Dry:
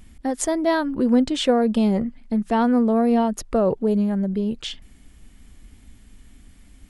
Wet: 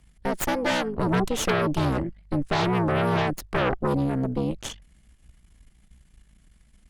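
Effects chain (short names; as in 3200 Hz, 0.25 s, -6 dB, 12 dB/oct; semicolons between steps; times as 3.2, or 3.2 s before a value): frequency shift -65 Hz; added harmonics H 8 -6 dB, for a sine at -7.5 dBFS; gain -8.5 dB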